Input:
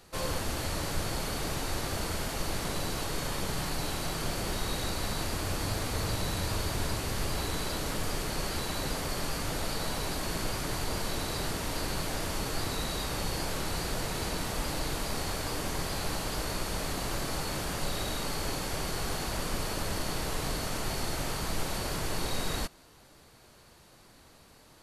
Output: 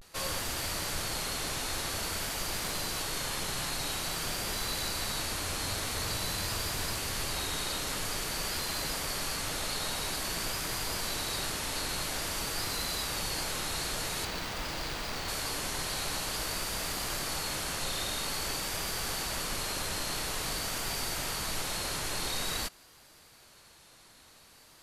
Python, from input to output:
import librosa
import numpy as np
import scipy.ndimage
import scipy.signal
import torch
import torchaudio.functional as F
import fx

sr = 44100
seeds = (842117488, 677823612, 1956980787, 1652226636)

y = fx.median_filter(x, sr, points=5, at=(14.23, 15.3))
y = fx.tilt_shelf(y, sr, db=-5.0, hz=970.0)
y = fx.vibrato(y, sr, rate_hz=0.49, depth_cents=81.0)
y = y * 10.0 ** (-1.5 / 20.0)